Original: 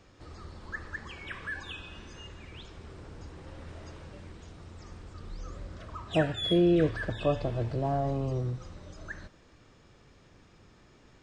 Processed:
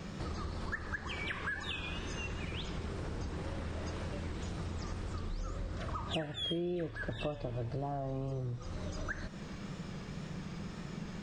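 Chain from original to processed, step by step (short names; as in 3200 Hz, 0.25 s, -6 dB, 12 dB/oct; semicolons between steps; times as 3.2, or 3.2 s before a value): wow and flutter 57 cents; band noise 140–210 Hz -57 dBFS; compressor 8:1, threshold -47 dBFS, peak gain reduction 25 dB; gain +11.5 dB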